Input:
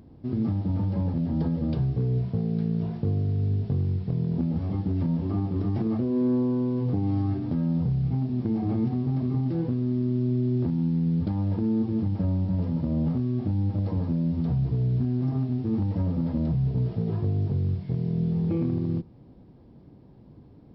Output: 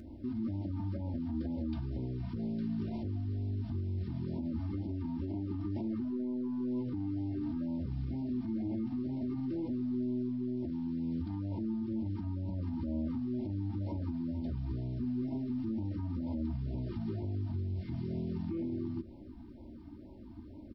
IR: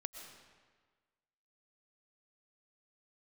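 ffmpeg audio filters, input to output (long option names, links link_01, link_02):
-filter_complex "[0:a]aecho=1:1:3.3:0.86,acompressor=threshold=-29dB:ratio=6,alimiter=level_in=5.5dB:limit=-24dB:level=0:latency=1:release=62,volume=-5.5dB,aeval=exprs='0.0335*(cos(1*acos(clip(val(0)/0.0335,-1,1)))-cos(1*PI/2))+0.000422*(cos(4*acos(clip(val(0)/0.0335,-1,1)))-cos(4*PI/2))':channel_layout=same,asplit=2[link_01][link_02];[1:a]atrim=start_sample=2205,adelay=13[link_03];[link_02][link_03]afir=irnorm=-1:irlink=0,volume=-10.5dB[link_04];[link_01][link_04]amix=inputs=2:normalize=0,afftfilt=real='re*(1-between(b*sr/1024,450*pow(1500/450,0.5+0.5*sin(2*PI*2.1*pts/sr))/1.41,450*pow(1500/450,0.5+0.5*sin(2*PI*2.1*pts/sr))*1.41))':imag='im*(1-between(b*sr/1024,450*pow(1500/450,0.5+0.5*sin(2*PI*2.1*pts/sr))/1.41,450*pow(1500/450,0.5+0.5*sin(2*PI*2.1*pts/sr))*1.41))':win_size=1024:overlap=0.75"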